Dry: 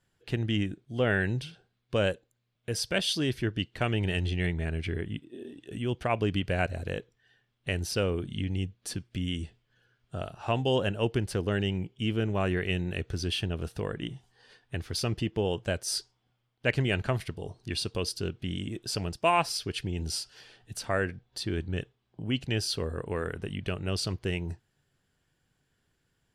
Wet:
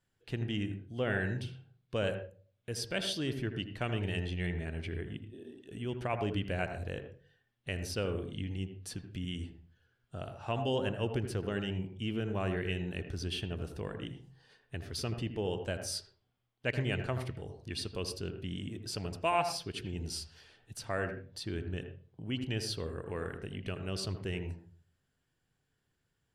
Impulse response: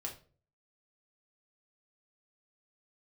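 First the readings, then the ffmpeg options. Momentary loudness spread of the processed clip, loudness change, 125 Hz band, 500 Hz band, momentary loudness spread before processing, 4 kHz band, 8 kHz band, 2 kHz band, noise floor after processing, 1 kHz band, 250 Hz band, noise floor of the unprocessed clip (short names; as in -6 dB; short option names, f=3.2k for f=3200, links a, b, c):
11 LU, -5.5 dB, -5.5 dB, -5.5 dB, 12 LU, -6.5 dB, -6.5 dB, -6.0 dB, -80 dBFS, -5.0 dB, -5.5 dB, -76 dBFS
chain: -filter_complex "[0:a]asplit=2[a][b];[1:a]atrim=start_sample=2205,lowpass=2.1k,adelay=79[c];[b][c]afir=irnorm=-1:irlink=0,volume=-5.5dB[d];[a][d]amix=inputs=2:normalize=0,volume=-6.5dB"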